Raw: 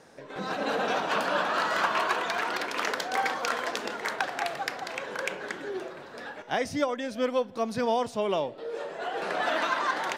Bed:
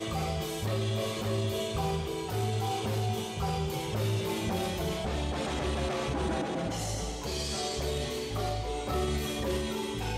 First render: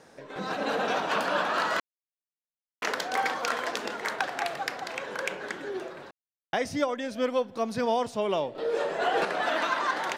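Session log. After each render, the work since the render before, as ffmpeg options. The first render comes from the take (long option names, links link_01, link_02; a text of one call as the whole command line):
ffmpeg -i in.wav -filter_complex "[0:a]asplit=7[link_01][link_02][link_03][link_04][link_05][link_06][link_07];[link_01]atrim=end=1.8,asetpts=PTS-STARTPTS,afade=type=out:start_time=1.796:duration=0.004:curve=hsin[link_08];[link_02]atrim=start=1.8:end=2.82,asetpts=PTS-STARTPTS,volume=0[link_09];[link_03]atrim=start=2.82:end=6.11,asetpts=PTS-STARTPTS,afade=type=in:duration=0.004:curve=hsin,afade=type=out:start_time=3.286:duration=0.004:curve=hsin[link_10];[link_04]atrim=start=6.11:end=6.53,asetpts=PTS-STARTPTS,volume=0[link_11];[link_05]atrim=start=6.53:end=8.552,asetpts=PTS-STARTPTS,afade=type=in:duration=0.004:curve=hsin[link_12];[link_06]atrim=start=8.548:end=9.252,asetpts=PTS-STARTPTS,volume=7dB[link_13];[link_07]atrim=start=9.248[link_14];[link_08][link_09][link_10][link_11][link_12]concat=n=5:v=0:a=1[link_15];[link_15][link_13]acrossfade=duration=0.004:curve1=hsin:curve2=hsin[link_16];[link_16][link_14]acrossfade=duration=0.004:curve1=hsin:curve2=hsin" out.wav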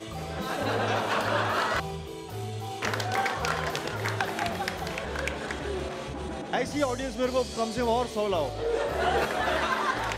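ffmpeg -i in.wav -i bed.wav -filter_complex "[1:a]volume=-4.5dB[link_01];[0:a][link_01]amix=inputs=2:normalize=0" out.wav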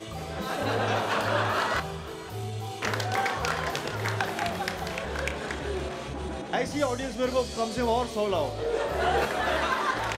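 ffmpeg -i in.wav -filter_complex "[0:a]asplit=2[link_01][link_02];[link_02]adelay=29,volume=-12.5dB[link_03];[link_01][link_03]amix=inputs=2:normalize=0,aecho=1:1:494:0.119" out.wav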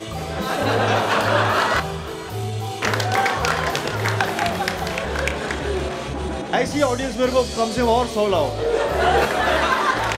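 ffmpeg -i in.wav -af "volume=8dB" out.wav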